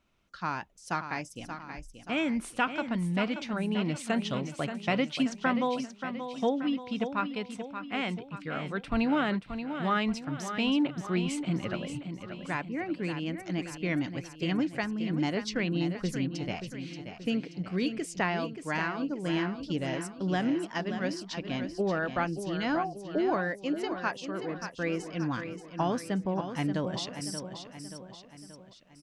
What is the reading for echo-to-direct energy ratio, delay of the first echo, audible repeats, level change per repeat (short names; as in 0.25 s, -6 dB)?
-7.5 dB, 0.58 s, 4, -6.0 dB